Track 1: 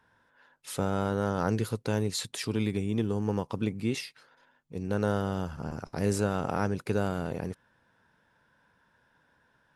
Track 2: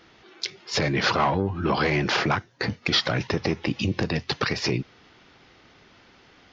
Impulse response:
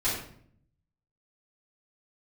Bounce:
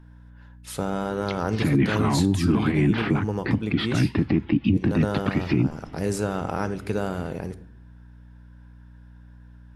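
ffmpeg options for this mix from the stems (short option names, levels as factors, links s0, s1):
-filter_complex "[0:a]aeval=exprs='val(0)+0.00398*(sin(2*PI*60*n/s)+sin(2*PI*2*60*n/s)/2+sin(2*PI*3*60*n/s)/3+sin(2*PI*4*60*n/s)/4+sin(2*PI*5*60*n/s)/5)':c=same,volume=1.19,asplit=2[s0][s1];[s1]volume=0.0891[s2];[1:a]lowpass=f=3200:w=0.5412,lowpass=f=3200:w=1.3066,alimiter=limit=0.133:level=0:latency=1:release=211,lowshelf=f=370:t=q:w=3:g=8.5,adelay=850,volume=1[s3];[2:a]atrim=start_sample=2205[s4];[s2][s4]afir=irnorm=-1:irlink=0[s5];[s0][s3][s5]amix=inputs=3:normalize=0,alimiter=limit=0.299:level=0:latency=1:release=219"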